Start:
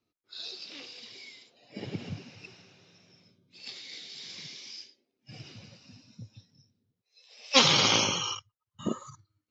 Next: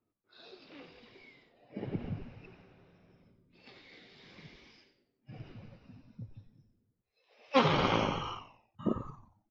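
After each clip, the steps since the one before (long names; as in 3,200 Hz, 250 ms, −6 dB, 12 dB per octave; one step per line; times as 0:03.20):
low-pass filter 1,500 Hz 12 dB per octave
on a send: echo with shifted repeats 90 ms, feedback 38%, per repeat −110 Hz, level −10.5 dB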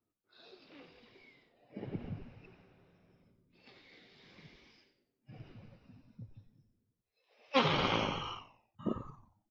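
dynamic equaliser 3,300 Hz, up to +5 dB, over −50 dBFS, Q 0.83
level −4 dB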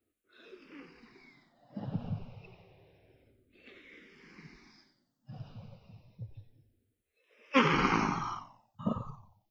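frequency shifter mixed with the dry sound −0.29 Hz
level +7 dB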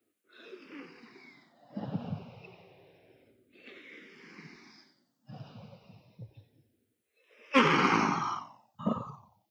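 high-pass filter 170 Hz 12 dB per octave
in parallel at −4 dB: soft clipping −26.5 dBFS, distortion −9 dB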